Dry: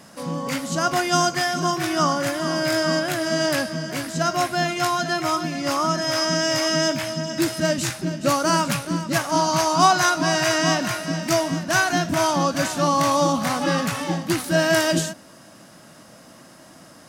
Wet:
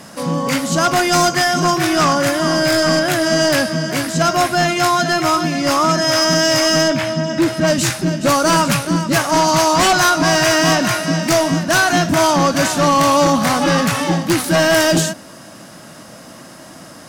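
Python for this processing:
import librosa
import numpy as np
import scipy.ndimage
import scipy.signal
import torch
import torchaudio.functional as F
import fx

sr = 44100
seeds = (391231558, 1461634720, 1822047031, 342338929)

y = fx.high_shelf(x, sr, hz=fx.line((6.82, 7100.0), (7.66, 3800.0)), db=-12.0, at=(6.82, 7.66), fade=0.02)
y = fx.fold_sine(y, sr, drive_db=10, ceiling_db=-4.0)
y = F.gain(torch.from_numpy(y), -5.0).numpy()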